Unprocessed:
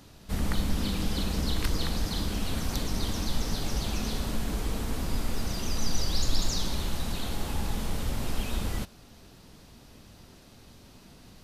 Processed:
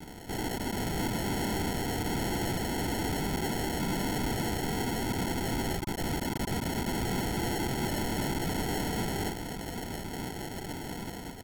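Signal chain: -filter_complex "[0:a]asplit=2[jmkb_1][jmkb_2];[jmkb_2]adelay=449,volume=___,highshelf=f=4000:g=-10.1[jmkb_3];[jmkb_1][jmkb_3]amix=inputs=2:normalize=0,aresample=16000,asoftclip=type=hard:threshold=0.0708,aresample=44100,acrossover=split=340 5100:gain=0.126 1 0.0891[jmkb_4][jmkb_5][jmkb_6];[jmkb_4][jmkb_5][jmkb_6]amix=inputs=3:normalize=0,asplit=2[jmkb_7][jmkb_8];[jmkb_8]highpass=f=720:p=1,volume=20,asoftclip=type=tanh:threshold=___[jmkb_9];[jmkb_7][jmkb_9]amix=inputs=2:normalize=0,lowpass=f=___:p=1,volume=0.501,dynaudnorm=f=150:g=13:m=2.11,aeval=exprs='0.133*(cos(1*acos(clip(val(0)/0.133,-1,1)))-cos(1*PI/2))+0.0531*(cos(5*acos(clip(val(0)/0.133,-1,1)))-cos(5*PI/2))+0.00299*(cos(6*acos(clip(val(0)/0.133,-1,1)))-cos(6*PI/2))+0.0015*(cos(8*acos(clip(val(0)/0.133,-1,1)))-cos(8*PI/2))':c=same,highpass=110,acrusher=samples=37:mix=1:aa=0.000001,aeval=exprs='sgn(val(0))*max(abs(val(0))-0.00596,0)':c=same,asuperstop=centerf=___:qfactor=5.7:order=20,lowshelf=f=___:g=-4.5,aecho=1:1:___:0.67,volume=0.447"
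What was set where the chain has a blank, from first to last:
0.501, 0.0794, 1800, 1100, 190, 0.9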